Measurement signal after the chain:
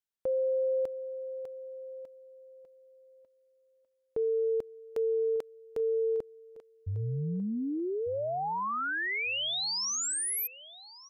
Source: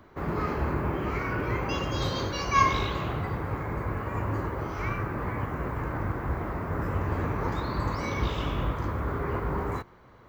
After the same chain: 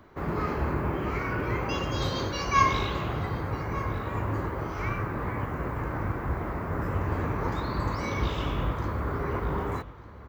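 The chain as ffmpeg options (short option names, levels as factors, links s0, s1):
-filter_complex "[0:a]asplit=2[s0][s1];[s1]adelay=1197,lowpass=f=4700:p=1,volume=0.15,asplit=2[s2][s3];[s3]adelay=1197,lowpass=f=4700:p=1,volume=0.23[s4];[s0][s2][s4]amix=inputs=3:normalize=0"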